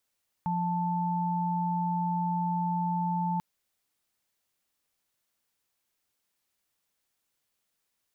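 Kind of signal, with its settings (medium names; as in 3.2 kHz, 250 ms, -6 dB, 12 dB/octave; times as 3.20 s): chord F3/A5 sine, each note -29 dBFS 2.94 s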